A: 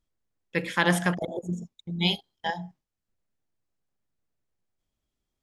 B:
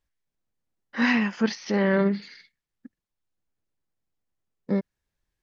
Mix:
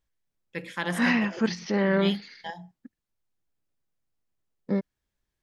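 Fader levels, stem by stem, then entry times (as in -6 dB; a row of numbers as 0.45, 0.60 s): -7.5, -1.5 dB; 0.00, 0.00 s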